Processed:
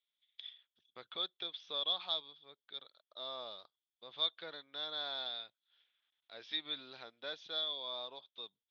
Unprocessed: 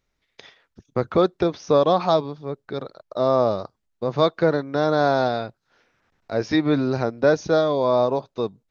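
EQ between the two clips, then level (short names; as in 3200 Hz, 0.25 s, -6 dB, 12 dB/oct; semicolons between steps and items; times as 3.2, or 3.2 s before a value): band-pass 3400 Hz, Q 14; air absorption 170 m; +9.0 dB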